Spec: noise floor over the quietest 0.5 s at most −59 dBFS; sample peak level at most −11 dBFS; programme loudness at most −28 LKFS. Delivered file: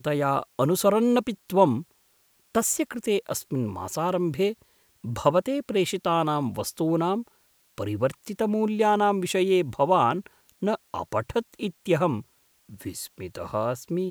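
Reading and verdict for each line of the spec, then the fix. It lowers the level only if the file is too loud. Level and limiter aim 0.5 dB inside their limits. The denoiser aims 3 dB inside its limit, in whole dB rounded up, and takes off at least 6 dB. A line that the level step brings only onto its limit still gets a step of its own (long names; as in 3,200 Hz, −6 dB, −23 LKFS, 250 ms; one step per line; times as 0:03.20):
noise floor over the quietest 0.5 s −65 dBFS: in spec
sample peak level −5.5 dBFS: out of spec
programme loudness −25.5 LKFS: out of spec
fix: level −3 dB
brickwall limiter −11.5 dBFS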